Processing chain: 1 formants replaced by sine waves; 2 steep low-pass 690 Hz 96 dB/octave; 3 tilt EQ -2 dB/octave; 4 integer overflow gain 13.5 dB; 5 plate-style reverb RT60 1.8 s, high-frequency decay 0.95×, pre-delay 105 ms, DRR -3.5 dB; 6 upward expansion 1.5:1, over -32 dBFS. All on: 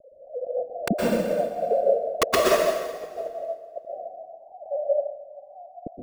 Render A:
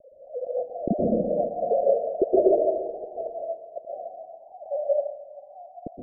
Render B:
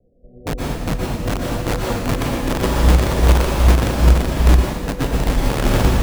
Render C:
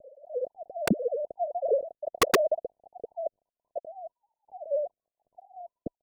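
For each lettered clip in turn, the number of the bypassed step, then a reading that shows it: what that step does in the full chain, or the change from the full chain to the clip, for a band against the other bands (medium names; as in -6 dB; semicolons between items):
4, distortion -6 dB; 1, 125 Hz band +18.0 dB; 5, loudness change -5.0 LU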